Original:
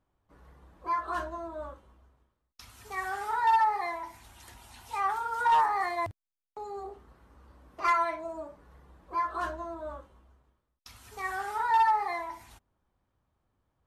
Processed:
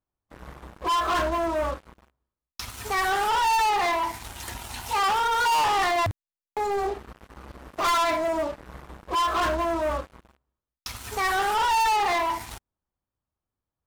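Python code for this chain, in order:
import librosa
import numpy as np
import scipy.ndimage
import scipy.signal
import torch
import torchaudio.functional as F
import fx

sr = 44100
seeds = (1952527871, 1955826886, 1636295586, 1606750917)

y = fx.leveller(x, sr, passes=5)
y = y * librosa.db_to_amplitude(-2.5)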